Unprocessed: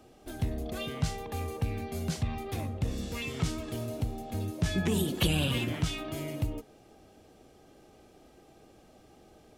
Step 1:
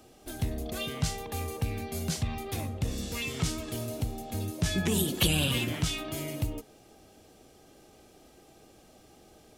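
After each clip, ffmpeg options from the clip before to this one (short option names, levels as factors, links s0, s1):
-af "highshelf=f=3500:g=8"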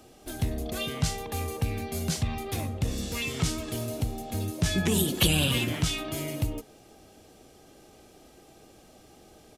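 -af "aresample=32000,aresample=44100,volume=1.33"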